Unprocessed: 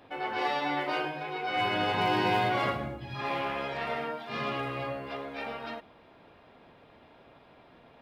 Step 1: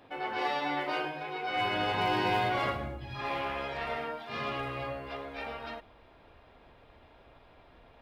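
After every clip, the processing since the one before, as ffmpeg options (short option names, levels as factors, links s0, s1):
-af "asubboost=boost=7:cutoff=64,volume=0.841"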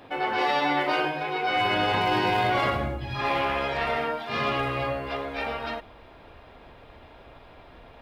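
-af "alimiter=limit=0.0631:level=0:latency=1:release=27,volume=2.66"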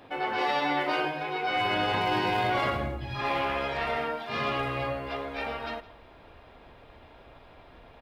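-af "aecho=1:1:164:0.1,volume=0.708"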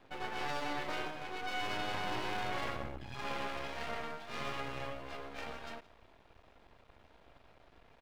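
-af "aeval=exprs='max(val(0),0)':c=same,volume=0.473"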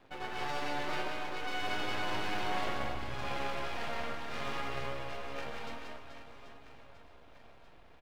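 -af "aecho=1:1:180|432|784.8|1279|1970:0.631|0.398|0.251|0.158|0.1"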